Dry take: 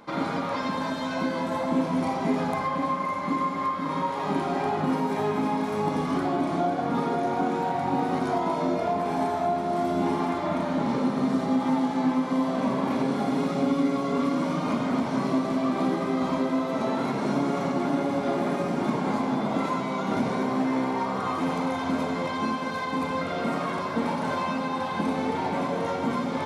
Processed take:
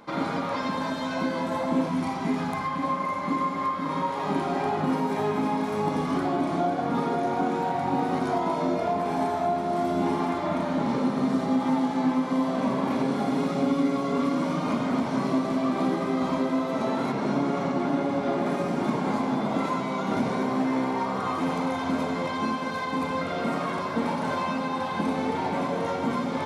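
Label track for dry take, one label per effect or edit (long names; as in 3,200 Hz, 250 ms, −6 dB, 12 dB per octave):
1.890000	2.840000	parametric band 540 Hz −8.5 dB 0.8 octaves
17.120000	18.460000	high-shelf EQ 8,600 Hz −10.5 dB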